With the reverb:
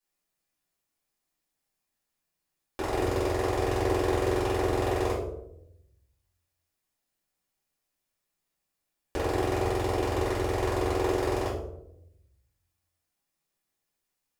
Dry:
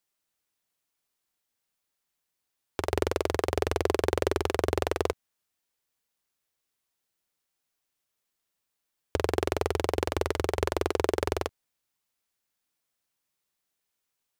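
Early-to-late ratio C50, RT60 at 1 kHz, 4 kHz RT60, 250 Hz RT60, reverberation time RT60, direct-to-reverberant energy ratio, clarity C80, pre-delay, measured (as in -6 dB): 4.0 dB, 0.65 s, 0.40 s, 1.1 s, 0.80 s, -11.0 dB, 8.0 dB, 3 ms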